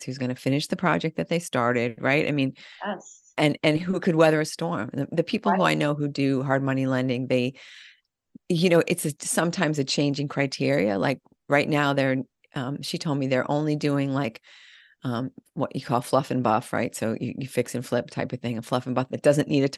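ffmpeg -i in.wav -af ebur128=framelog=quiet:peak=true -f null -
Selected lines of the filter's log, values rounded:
Integrated loudness:
  I:         -25.0 LUFS
  Threshold: -35.3 LUFS
Loudness range:
  LRA:         3.8 LU
  Threshold: -45.3 LUFS
  LRA low:   -27.5 LUFS
  LRA high:  -23.7 LUFS
True peak:
  Peak:       -4.5 dBFS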